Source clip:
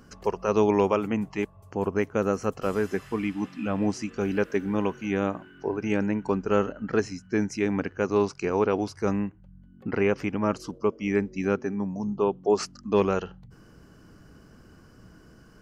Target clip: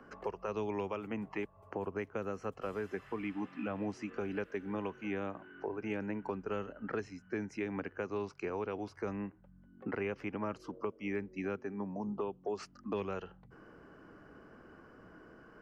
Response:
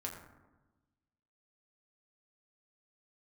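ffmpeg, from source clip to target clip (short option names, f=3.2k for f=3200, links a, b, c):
-filter_complex "[0:a]acrossover=split=280 2400:gain=0.2 1 0.0794[a][b][c];[a][b][c]amix=inputs=3:normalize=0,acrossover=split=150|3000[d][e][f];[e]acompressor=threshold=-39dB:ratio=6[g];[d][g][f]amix=inputs=3:normalize=0,volume=2dB"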